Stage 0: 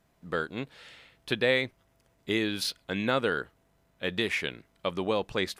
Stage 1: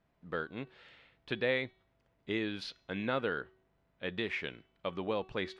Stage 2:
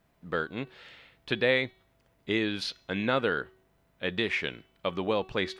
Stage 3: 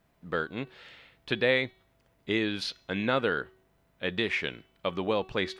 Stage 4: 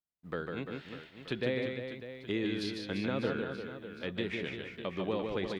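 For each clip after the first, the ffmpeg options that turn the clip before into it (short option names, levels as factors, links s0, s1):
-af "lowpass=3400,bandreject=f=377:t=h:w=4,bandreject=f=754:t=h:w=4,bandreject=f=1131:t=h:w=4,bandreject=f=1508:t=h:w=4,bandreject=f=1885:t=h:w=4,bandreject=f=2262:t=h:w=4,bandreject=f=2639:t=h:w=4,bandreject=f=3016:t=h:w=4,bandreject=f=3393:t=h:w=4,bandreject=f=3770:t=h:w=4,bandreject=f=4147:t=h:w=4,bandreject=f=4524:t=h:w=4,bandreject=f=4901:t=h:w=4,bandreject=f=5278:t=h:w=4,bandreject=f=5655:t=h:w=4,bandreject=f=6032:t=h:w=4,bandreject=f=6409:t=h:w=4,bandreject=f=6786:t=h:w=4,bandreject=f=7163:t=h:w=4,bandreject=f=7540:t=h:w=4,volume=0.501"
-af "highshelf=f=5800:g=9,volume=2"
-af anull
-filter_complex "[0:a]acrossover=split=460[s0][s1];[s1]acompressor=threshold=0.0141:ratio=3[s2];[s0][s2]amix=inputs=2:normalize=0,aecho=1:1:150|345|598.5|928|1356:0.631|0.398|0.251|0.158|0.1,agate=range=0.0224:threshold=0.00501:ratio=3:detection=peak,volume=0.668"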